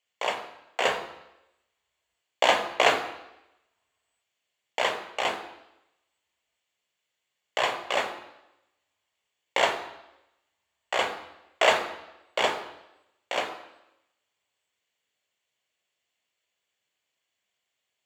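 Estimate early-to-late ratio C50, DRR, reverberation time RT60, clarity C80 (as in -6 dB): 9.5 dB, 5.5 dB, 0.90 s, 12.0 dB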